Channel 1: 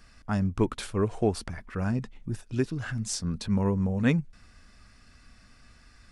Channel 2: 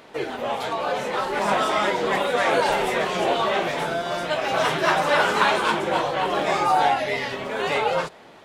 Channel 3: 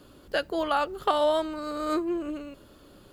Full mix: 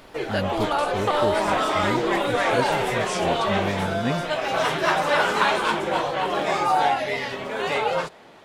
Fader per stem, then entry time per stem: −2.5, −1.0, 0.0 decibels; 0.00, 0.00, 0.00 seconds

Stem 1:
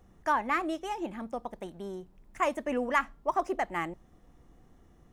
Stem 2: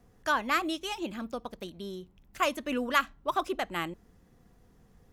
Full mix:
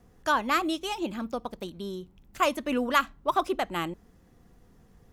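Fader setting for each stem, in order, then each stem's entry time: −8.5, +2.0 decibels; 0.00, 0.00 seconds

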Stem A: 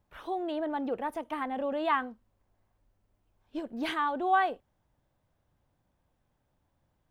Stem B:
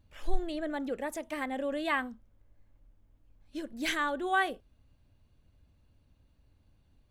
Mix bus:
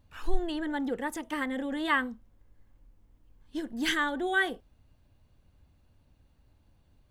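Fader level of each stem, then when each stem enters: −1.0, +1.5 decibels; 0.00, 0.00 seconds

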